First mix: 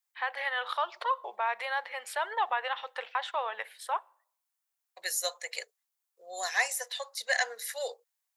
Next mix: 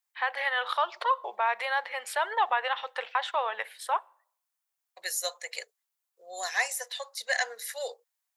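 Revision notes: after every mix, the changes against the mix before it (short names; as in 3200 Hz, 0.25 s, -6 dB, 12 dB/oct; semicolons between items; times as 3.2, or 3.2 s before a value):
first voice +3.5 dB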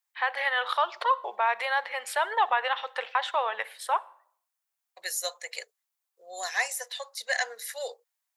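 first voice: send +9.0 dB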